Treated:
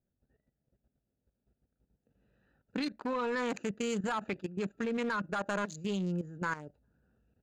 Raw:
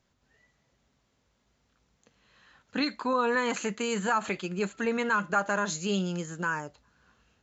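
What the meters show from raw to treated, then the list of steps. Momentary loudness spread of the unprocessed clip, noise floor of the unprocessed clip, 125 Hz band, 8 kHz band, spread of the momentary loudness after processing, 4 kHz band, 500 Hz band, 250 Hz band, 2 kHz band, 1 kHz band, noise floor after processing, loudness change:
7 LU, −73 dBFS, −2.5 dB, can't be measured, 5 LU, −7.5 dB, −5.0 dB, −3.5 dB, −8.0 dB, −7.5 dB, −85 dBFS, −6.0 dB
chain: adaptive Wiener filter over 41 samples
sine wavefolder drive 4 dB, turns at −14.5 dBFS
output level in coarse steps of 13 dB
level −6.5 dB

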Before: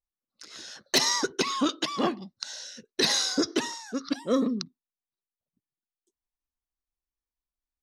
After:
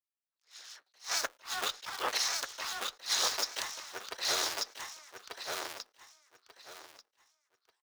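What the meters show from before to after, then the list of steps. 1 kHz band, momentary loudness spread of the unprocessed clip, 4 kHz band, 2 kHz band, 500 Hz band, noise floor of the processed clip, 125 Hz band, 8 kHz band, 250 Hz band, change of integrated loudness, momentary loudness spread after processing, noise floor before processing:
−4.5 dB, 17 LU, −4.5 dB, −3.0 dB, −12.0 dB, below −85 dBFS, below −15 dB, −3.0 dB, −26.5 dB, −6.5 dB, 20 LU, below −85 dBFS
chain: sub-harmonics by changed cycles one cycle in 3, inverted
high-pass filter 860 Hz 12 dB per octave
in parallel at −6 dB: bit reduction 5 bits
on the sum: frequency shifter +20 Hz
two-band tremolo in antiphase 6.3 Hz, depth 50%, crossover 2,300 Hz
on a send: repeating echo 1,189 ms, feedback 24%, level −3 dB
on the sum: flanger 1.6 Hz, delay 0 ms, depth 3.9 ms, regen −80%
level that may rise only so fast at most 240 dB per second

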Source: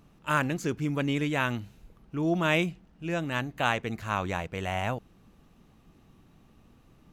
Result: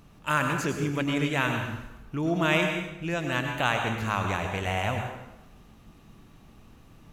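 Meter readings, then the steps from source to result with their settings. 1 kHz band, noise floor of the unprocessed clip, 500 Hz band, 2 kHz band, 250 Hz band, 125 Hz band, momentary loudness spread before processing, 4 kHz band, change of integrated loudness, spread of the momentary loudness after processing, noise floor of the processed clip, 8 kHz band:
+2.5 dB, −60 dBFS, +1.5 dB, +3.0 dB, +1.0 dB, +2.0 dB, 8 LU, +3.5 dB, +2.0 dB, 9 LU, −54 dBFS, +4.0 dB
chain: parametric band 310 Hz −3.5 dB 2.9 octaves
in parallel at 0 dB: downward compressor, threshold −37 dBFS, peak gain reduction 15 dB
on the sum: dense smooth reverb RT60 0.94 s, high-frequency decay 0.85×, pre-delay 85 ms, DRR 3.5 dB

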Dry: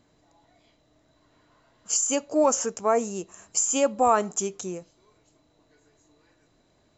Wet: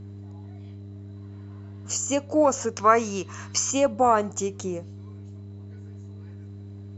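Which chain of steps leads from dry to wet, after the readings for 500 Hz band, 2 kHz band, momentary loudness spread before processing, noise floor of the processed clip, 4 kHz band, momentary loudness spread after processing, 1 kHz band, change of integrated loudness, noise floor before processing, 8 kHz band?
+1.0 dB, +4.0 dB, 14 LU, −40 dBFS, +1.5 dB, 21 LU, +2.5 dB, +0.5 dB, −65 dBFS, can't be measured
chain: harmonic generator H 2 −27 dB, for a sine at −8.5 dBFS
gain on a spectral selection 0:02.77–0:03.71, 930–6,600 Hz +10 dB
high-shelf EQ 5,100 Hz −10.5 dB
hum with harmonics 100 Hz, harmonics 4, −45 dBFS −8 dB per octave
in parallel at −2.5 dB: downward compressor, threshold −34 dBFS, peak gain reduction 19.5 dB

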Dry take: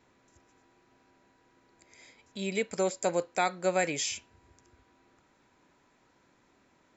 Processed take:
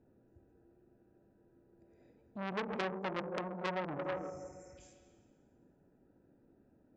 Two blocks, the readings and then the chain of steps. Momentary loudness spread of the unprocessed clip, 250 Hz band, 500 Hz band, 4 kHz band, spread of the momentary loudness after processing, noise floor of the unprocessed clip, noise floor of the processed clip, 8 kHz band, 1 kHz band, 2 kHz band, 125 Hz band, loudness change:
9 LU, −5.0 dB, −8.5 dB, −11.0 dB, 15 LU, −67 dBFS, −70 dBFS, can't be measured, −7.0 dB, −7.5 dB, −3.5 dB, −9.0 dB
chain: adaptive Wiener filter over 41 samples
high-shelf EQ 2,300 Hz −9.5 dB
echo through a band-pass that steps 163 ms, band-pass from 180 Hz, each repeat 1.4 octaves, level −7 dB
dynamic equaliser 580 Hz, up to +4 dB, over −39 dBFS, Q 5.4
dense smooth reverb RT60 1.7 s, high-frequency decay 0.9×, DRR 6.5 dB
treble cut that deepens with the level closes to 320 Hz, closed at −26 dBFS
healed spectral selection 0:03.91–0:04.76, 1,400–5,200 Hz before
saturating transformer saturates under 2,500 Hz
level +2 dB

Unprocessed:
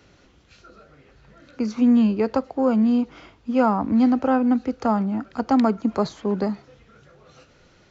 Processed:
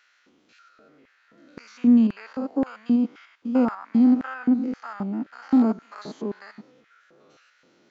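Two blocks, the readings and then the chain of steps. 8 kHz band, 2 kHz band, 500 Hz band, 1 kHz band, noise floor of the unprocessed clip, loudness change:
can't be measured, −3.0 dB, −8.5 dB, −10.5 dB, −56 dBFS, −1.5 dB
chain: spectrum averaged block by block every 100 ms
pitch vibrato 7.4 Hz 22 cents
auto-filter high-pass square 1.9 Hz 260–1,600 Hz
level −5 dB

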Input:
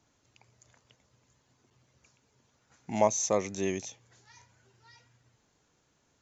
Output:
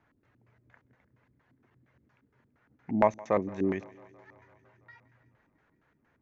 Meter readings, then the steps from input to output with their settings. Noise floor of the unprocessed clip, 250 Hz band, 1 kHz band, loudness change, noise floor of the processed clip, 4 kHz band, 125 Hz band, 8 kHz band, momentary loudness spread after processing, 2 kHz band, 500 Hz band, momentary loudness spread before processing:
−72 dBFS, +4.0 dB, +1.5 dB, +0.5 dB, −72 dBFS, below −10 dB, +2.0 dB, can't be measured, 8 LU, +1.5 dB, +0.5 dB, 12 LU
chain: auto-filter low-pass square 4.3 Hz 290–1,800 Hz
feedback echo with a high-pass in the loop 167 ms, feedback 77%, high-pass 260 Hz, level −22 dB

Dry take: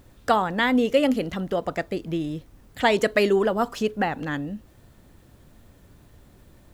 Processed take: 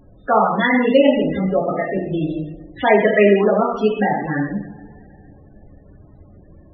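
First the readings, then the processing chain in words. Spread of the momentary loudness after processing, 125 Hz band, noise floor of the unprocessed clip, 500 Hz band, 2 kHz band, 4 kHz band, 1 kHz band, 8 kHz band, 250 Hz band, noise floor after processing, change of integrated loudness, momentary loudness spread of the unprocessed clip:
12 LU, +8.0 dB, −54 dBFS, +7.5 dB, +5.5 dB, 0.0 dB, +6.0 dB, below −15 dB, +6.5 dB, −47 dBFS, +6.5 dB, 11 LU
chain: coupled-rooms reverb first 0.75 s, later 3 s, from −20 dB, DRR −6.5 dB
spectral peaks only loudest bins 32

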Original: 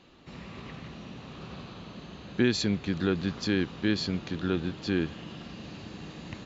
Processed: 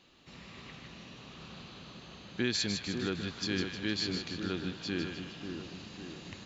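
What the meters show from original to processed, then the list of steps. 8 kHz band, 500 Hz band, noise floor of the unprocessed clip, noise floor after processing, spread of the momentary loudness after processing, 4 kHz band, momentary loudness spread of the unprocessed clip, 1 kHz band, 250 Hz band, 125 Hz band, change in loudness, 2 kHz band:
can't be measured, −7.0 dB, −47 dBFS, −52 dBFS, 16 LU, +0.5 dB, 16 LU, −5.0 dB, −7.0 dB, −7.5 dB, −6.0 dB, −3.0 dB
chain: high-shelf EQ 2,000 Hz +9.5 dB
echo with a time of its own for lows and highs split 1,400 Hz, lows 545 ms, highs 154 ms, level −6 dB
level −8.5 dB

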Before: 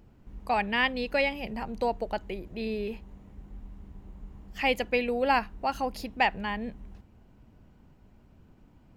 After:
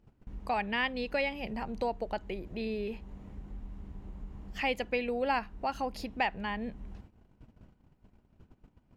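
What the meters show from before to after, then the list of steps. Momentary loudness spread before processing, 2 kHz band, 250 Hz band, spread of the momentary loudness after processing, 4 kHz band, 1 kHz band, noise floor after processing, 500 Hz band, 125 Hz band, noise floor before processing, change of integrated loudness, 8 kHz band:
22 LU, −5.0 dB, −3.0 dB, 16 LU, −5.0 dB, −5.0 dB, −68 dBFS, −4.0 dB, −1.5 dB, −58 dBFS, −4.5 dB, −5.0 dB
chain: noise gate −53 dBFS, range −17 dB
high-shelf EQ 12,000 Hz −11.5 dB
downward compressor 1.5 to 1, threshold −52 dBFS, peak gain reduction 11.5 dB
level +5.5 dB

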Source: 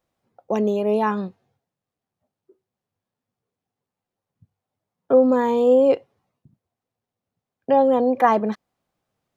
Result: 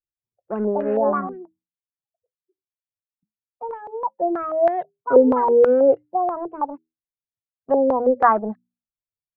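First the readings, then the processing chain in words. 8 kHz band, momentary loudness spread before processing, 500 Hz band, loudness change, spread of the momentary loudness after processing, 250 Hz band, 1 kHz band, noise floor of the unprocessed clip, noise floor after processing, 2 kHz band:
can't be measured, 12 LU, +1.5 dB, −0.5 dB, 17 LU, −1.0 dB, +2.5 dB, below −85 dBFS, below −85 dBFS, 0.0 dB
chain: spectral dynamics exaggerated over time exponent 1.5
mains-hum notches 60/120/180/240/300 Hz
delay with pitch and tempo change per echo 373 ms, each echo +5 semitones, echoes 2, each echo −6 dB
in parallel at −5 dB: dead-zone distortion −31.5 dBFS
on the sum: high-frequency loss of the air 390 metres
low-pass on a step sequencer 6.2 Hz 430–1,700 Hz
level −4 dB

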